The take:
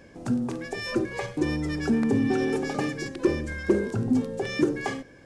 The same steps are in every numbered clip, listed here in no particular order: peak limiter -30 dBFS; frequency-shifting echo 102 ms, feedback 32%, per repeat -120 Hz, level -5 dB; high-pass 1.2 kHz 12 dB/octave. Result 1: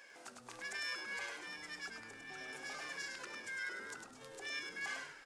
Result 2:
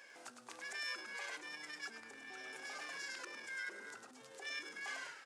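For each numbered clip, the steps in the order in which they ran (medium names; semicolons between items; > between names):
peak limiter > high-pass > frequency-shifting echo; frequency-shifting echo > peak limiter > high-pass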